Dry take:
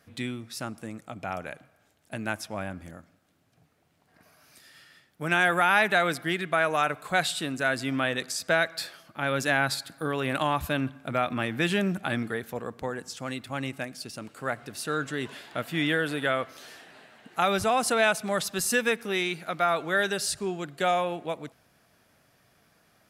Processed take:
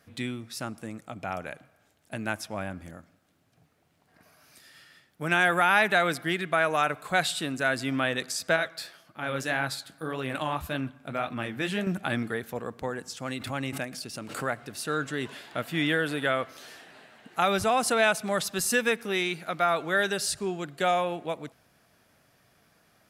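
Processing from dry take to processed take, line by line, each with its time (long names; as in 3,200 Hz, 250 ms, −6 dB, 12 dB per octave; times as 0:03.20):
0:08.56–0:11.87: flanger 1.8 Hz, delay 6.3 ms, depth 9.5 ms, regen −52%
0:13.25–0:14.48: background raised ahead of every attack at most 69 dB per second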